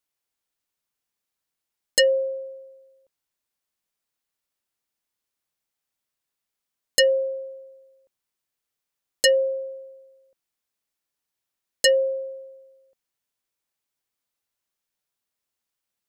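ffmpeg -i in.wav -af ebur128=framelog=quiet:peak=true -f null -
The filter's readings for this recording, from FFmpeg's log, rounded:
Integrated loudness:
  I:         -22.0 LUFS
  Threshold: -35.1 LUFS
Loudness range:
  LRA:         3.2 LU
  Threshold: -48.6 LUFS
  LRA low:   -28.7 LUFS
  LRA high:  -25.4 LUFS
True peak:
  Peak:      -10.5 dBFS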